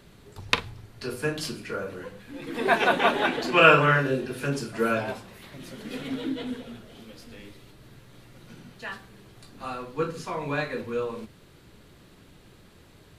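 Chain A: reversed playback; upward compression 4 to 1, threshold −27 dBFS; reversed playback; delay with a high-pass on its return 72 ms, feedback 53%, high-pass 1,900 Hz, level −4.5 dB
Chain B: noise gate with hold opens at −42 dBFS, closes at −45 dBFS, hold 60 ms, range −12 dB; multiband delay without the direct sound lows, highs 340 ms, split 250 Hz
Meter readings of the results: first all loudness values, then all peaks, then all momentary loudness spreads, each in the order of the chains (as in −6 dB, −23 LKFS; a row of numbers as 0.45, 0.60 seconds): −26.5, −26.0 LKFS; −2.0, −3.0 dBFS; 16, 21 LU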